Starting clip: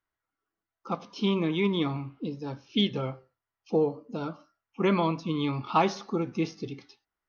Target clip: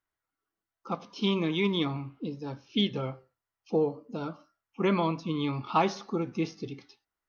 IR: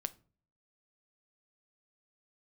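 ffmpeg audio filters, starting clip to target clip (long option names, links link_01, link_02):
-filter_complex "[0:a]asettb=1/sr,asplit=3[link_01][link_02][link_03];[link_01]atrim=end=1.224[link_04];[link_02]atrim=start=1.22:end=1.85,asetpts=PTS-STARTPTS,afade=type=in:duration=0.004:curve=qsin,afade=type=out:start_time=0.626:duration=0.004:curve=qsin,highshelf=frequency=3800:gain=9[link_05];[link_03]atrim=start=1.846[link_06];[link_04][link_05]acrossfade=duration=0.004:curve1=hsin:curve2=qsin[link_07];[link_07][link_06]acrossfade=duration=0.004:curve1=qsin:curve2=hsin,volume=-1.5dB"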